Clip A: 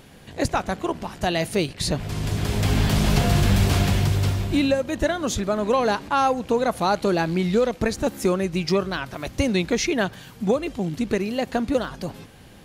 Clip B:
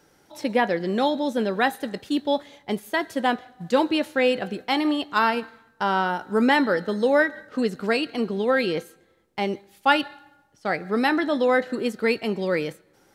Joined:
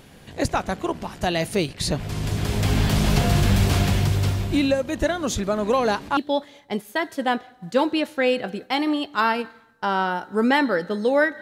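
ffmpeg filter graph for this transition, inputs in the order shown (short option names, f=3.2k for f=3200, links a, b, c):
-filter_complex "[1:a]asplit=2[a][b];[0:a]apad=whole_dur=11.41,atrim=end=11.41,atrim=end=6.172[c];[b]atrim=start=2.148:end=7.39[d];[a]atrim=start=1.67:end=2.15,asetpts=PTS-STARTPTS,volume=-15.5dB,afade=t=in:d=0.004:c=hsin,afade=t=out:st=0.476:d=0.004:c=hsin,adelay=250929S[e];[c][d]acrossfade=d=0.004:c1=hsin:c2=hsin[f];[f][e]amix=inputs=2:normalize=0"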